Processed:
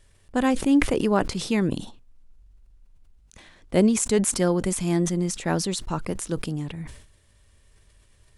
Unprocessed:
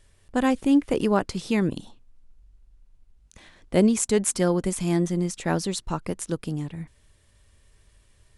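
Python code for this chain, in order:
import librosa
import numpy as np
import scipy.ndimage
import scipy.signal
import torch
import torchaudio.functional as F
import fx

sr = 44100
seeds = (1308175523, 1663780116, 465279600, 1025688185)

y = fx.sustainer(x, sr, db_per_s=84.0)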